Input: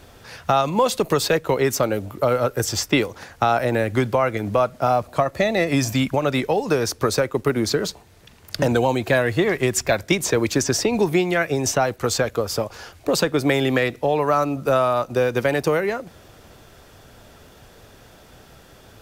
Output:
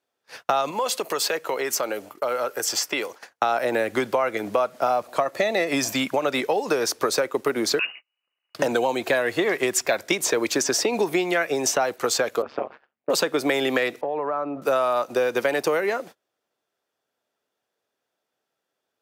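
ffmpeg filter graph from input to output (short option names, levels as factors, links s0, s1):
-filter_complex "[0:a]asettb=1/sr,asplit=3[s0][s1][s2];[s0]atrim=end=0.714[s3];[s1]atrim=start=0.71:end=3.28,asetpts=PTS-STARTPTS,afade=t=in:d=0.004:c=qsin,afade=t=out:st=2.566:d=0.004:c=qsin,bandreject=f=3700:w=14,acompressor=threshold=0.1:ratio=2.5:attack=3.2:release=140:knee=1:detection=peak,lowshelf=f=370:g=-8.5[s4];[s2]atrim=start=3.276[s5];[s3][s4]acrossfade=d=0.004:c1=hsin:c2=qsin[s6];[s6][s5]acrossfade=d=0.004:c1=qsin:c2=hsin,asettb=1/sr,asplit=3[s7][s8][s9];[s7]atrim=end=7.794[s10];[s8]atrim=start=7.79:end=8.55,asetpts=PTS-STARTPTS,afade=t=in:d=0.004:c=qsin,afade=t=out:st=0.756:d=0.004:c=qsin,bandreject=f=60:t=h:w=6,bandreject=f=120:t=h:w=6,bandreject=f=180:t=h:w=6,bandreject=f=240:t=h:w=6,bandreject=f=300:t=h:w=6,lowpass=f=2600:t=q:w=0.5098,lowpass=f=2600:t=q:w=0.6013,lowpass=f=2600:t=q:w=0.9,lowpass=f=2600:t=q:w=2.563,afreqshift=-3000[s11];[s9]atrim=start=8.546[s12];[s10][s11]acrossfade=d=0.004:c1=hsin:c2=qsin[s13];[s13][s12]acrossfade=d=0.004:c1=qsin:c2=hsin,asettb=1/sr,asplit=3[s14][s15][s16];[s14]atrim=end=12.424[s17];[s15]atrim=start=12.42:end=13.1,asetpts=PTS-STARTPTS,afade=t=in:d=0.004:c=qsin,afade=t=out:st=0.676:d=0.004:c=qsin,lowpass=f=2700:w=0.5412,lowpass=f=2700:w=1.3066,tremolo=f=140:d=1,aeval=exprs='val(0)+0.00282*(sin(2*PI*50*n/s)+sin(2*PI*2*50*n/s)/2+sin(2*PI*3*50*n/s)/3+sin(2*PI*4*50*n/s)/4+sin(2*PI*5*50*n/s)/5)':c=same[s18];[s16]atrim=start=13.096[s19];[s17][s18]acrossfade=d=0.004:c1=hsin:c2=qsin[s20];[s20][s19]acrossfade=d=0.004:c1=qsin:c2=hsin,asettb=1/sr,asplit=3[s21][s22][s23];[s21]atrim=end=14.014[s24];[s22]atrim=start=14.01:end=14.62,asetpts=PTS-STARTPTS,afade=t=in:d=0.004:c=qsin,afade=t=out:st=0.606:d=0.004:c=qsin,lowpass=1400,acompressor=threshold=0.0708:ratio=5:attack=3.2:release=140:knee=1:detection=peak[s25];[s23]atrim=start=14.616[s26];[s24][s25]acrossfade=d=0.004:c1=hsin:c2=qsin[s27];[s27][s26]acrossfade=d=0.004:c1=qsin:c2=hsin,agate=range=0.0224:threshold=0.0126:ratio=16:detection=peak,highpass=340,acompressor=threshold=0.0891:ratio=3,volume=1.26"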